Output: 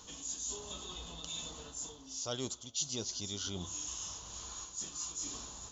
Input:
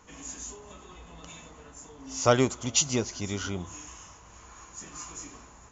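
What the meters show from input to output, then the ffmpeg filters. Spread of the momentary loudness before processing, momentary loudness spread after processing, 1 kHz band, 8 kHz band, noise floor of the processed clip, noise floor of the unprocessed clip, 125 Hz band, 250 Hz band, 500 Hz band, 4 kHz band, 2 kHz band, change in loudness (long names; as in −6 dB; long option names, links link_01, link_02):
23 LU, 7 LU, −15.0 dB, can't be measured, −53 dBFS, −52 dBFS, −13.0 dB, −13.5 dB, −16.0 dB, −4.0 dB, −16.0 dB, −10.5 dB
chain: -af "highshelf=frequency=2800:width_type=q:width=3:gain=8.5,areverse,acompressor=threshold=-39dB:ratio=4,areverse"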